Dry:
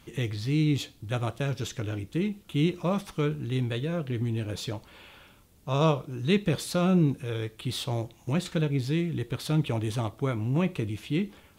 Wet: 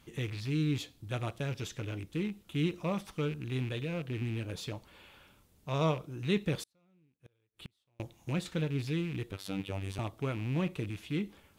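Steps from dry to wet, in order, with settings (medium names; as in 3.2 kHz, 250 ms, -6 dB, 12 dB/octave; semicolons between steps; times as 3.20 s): rattle on loud lows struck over -31 dBFS, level -30 dBFS; 6.63–8.00 s: inverted gate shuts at -27 dBFS, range -40 dB; 9.32–9.99 s: robot voice 96.9 Hz; trim -6 dB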